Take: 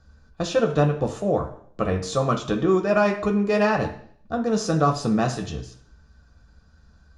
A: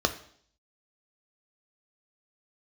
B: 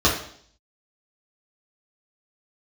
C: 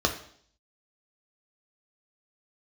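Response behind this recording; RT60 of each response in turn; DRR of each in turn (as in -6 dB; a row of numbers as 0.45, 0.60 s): C; 0.60, 0.60, 0.60 s; 6.5, -6.5, 2.5 dB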